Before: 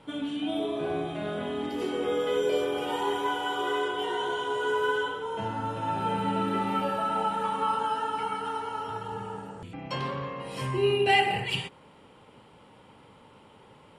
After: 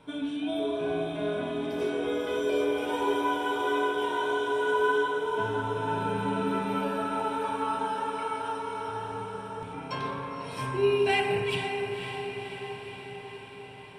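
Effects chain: ripple EQ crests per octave 1.6, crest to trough 8 dB; diffused feedback echo 0.537 s, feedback 66%, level -7 dB; gain -2.5 dB

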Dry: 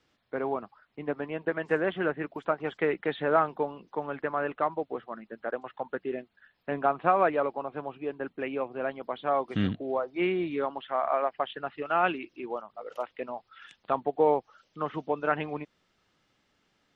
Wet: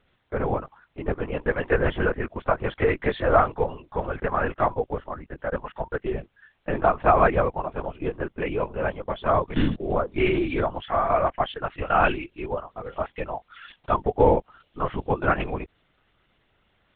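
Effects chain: LPC vocoder at 8 kHz whisper; gain +5.5 dB

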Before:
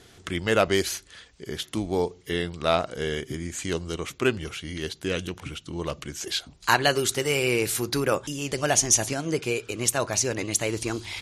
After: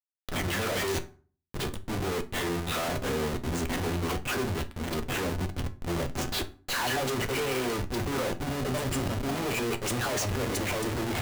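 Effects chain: 6.86–9.13 bell 11000 Hz -11.5 dB 1.5 oct; 8.36–9.15 spectral repair 620–7000 Hz before; dispersion lows, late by 0.139 s, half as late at 1300 Hz; Schmitt trigger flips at -32 dBFS; limiter -30 dBFS, peak gain reduction 8 dB; reverb RT60 0.40 s, pre-delay 4 ms, DRR 9.5 dB; flange 0.41 Hz, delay 8.5 ms, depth 3.9 ms, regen +73%; gain +5.5 dB

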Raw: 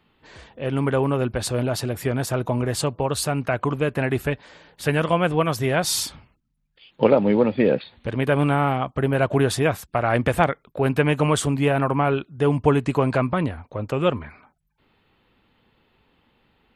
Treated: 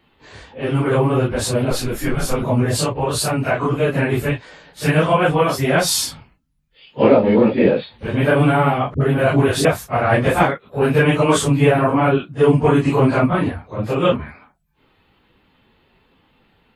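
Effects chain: phase scrambler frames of 0.1 s; 1.7–2.43 frequency shift -120 Hz; 8.94–9.65 dispersion highs, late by 66 ms, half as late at 510 Hz; gain +5 dB

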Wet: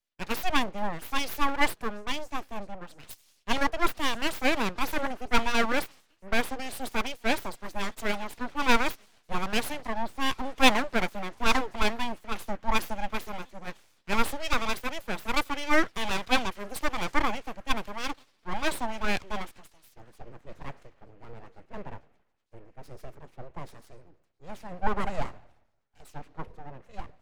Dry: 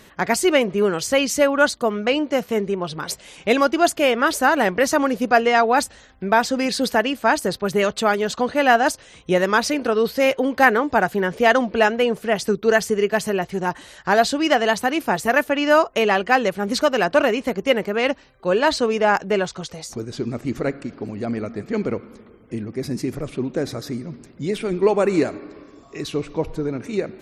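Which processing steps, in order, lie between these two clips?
thin delay 0.938 s, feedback 75%, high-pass 1500 Hz, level -21.5 dB; full-wave rectifier; three-band expander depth 100%; gain -8 dB

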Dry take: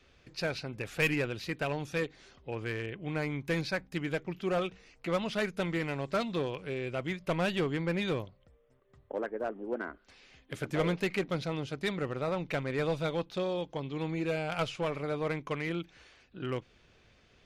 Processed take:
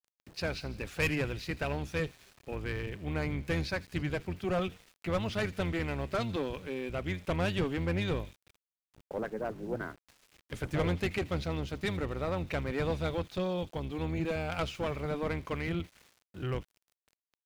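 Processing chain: octaver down 1 oct, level 0 dB; tube stage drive 20 dB, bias 0.35; thin delay 81 ms, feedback 75%, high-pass 2600 Hz, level -17 dB; sample gate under -52.5 dBFS

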